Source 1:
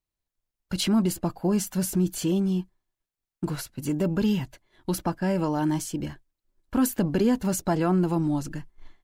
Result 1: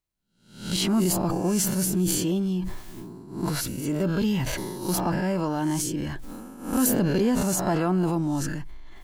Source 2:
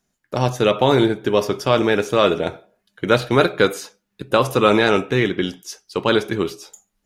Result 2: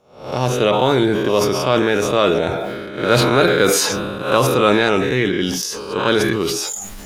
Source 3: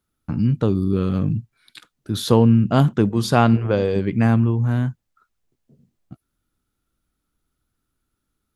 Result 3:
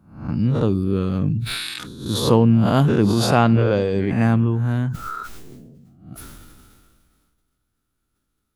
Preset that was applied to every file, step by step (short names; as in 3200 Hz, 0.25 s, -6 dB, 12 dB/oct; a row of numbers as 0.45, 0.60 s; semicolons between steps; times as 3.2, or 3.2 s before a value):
spectral swells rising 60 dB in 0.51 s; sustainer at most 27 dB/s; gain -1.5 dB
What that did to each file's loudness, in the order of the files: +1.0, +2.0, 0.0 LU